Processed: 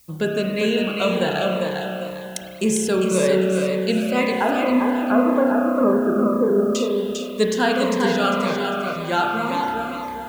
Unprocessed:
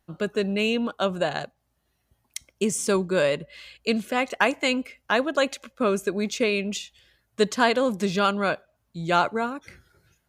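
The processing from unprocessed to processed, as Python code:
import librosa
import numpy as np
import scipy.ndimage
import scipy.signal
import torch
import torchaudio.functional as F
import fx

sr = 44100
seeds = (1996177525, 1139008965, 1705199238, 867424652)

y = fx.steep_lowpass(x, sr, hz=1500.0, slope=72, at=(4.27, 6.75))
y = fx.rider(y, sr, range_db=10, speed_s=0.5)
y = fx.dmg_noise_colour(y, sr, seeds[0], colour='blue', level_db=-57.0)
y = fx.echo_feedback(y, sr, ms=400, feedback_pct=37, wet_db=-4.0)
y = fx.rev_spring(y, sr, rt60_s=2.4, pass_ms=(32,), chirp_ms=75, drr_db=0.0)
y = fx.notch_cascade(y, sr, direction='falling', hz=1.9)
y = y * 10.0 ** (3.0 / 20.0)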